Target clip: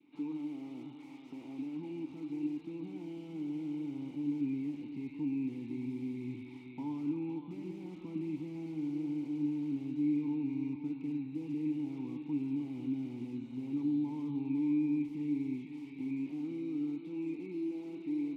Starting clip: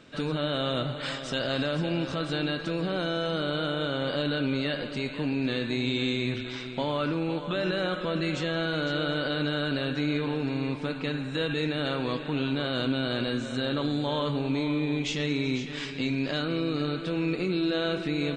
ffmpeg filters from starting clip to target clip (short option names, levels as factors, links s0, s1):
-filter_complex "[0:a]acrossover=split=150|910[s0][s1][s2];[s0]dynaudnorm=f=550:g=11:m=5.62[s3];[s2]aeval=exprs='(mod(50.1*val(0)+1,2)-1)/50.1':c=same[s4];[s3][s1][s4]amix=inputs=3:normalize=0,asplit=3[s5][s6][s7];[s5]bandpass=f=300:t=q:w=8,volume=1[s8];[s6]bandpass=f=870:t=q:w=8,volume=0.501[s9];[s7]bandpass=f=2240:t=q:w=8,volume=0.355[s10];[s8][s9][s10]amix=inputs=3:normalize=0,adynamicequalizer=threshold=0.00178:dfrequency=1100:dqfactor=0.98:tfrequency=1100:tqfactor=0.98:attack=5:release=100:ratio=0.375:range=2.5:mode=cutabove:tftype=bell,volume=0.75"